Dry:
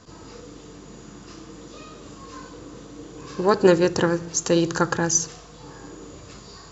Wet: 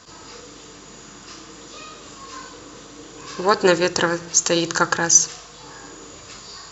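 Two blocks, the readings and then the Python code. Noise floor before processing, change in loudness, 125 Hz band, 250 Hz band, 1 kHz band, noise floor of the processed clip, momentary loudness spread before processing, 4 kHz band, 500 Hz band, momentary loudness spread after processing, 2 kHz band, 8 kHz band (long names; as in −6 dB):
−45 dBFS, +3.0 dB, −4.0 dB, −2.5 dB, +4.0 dB, −43 dBFS, 23 LU, +7.5 dB, −0.5 dB, 23 LU, +6.0 dB, can't be measured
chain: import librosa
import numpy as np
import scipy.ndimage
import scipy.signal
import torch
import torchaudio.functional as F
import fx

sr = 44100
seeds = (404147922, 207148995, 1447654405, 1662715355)

y = fx.tilt_shelf(x, sr, db=-6.5, hz=640.0)
y = y * librosa.db_to_amplitude(1.5)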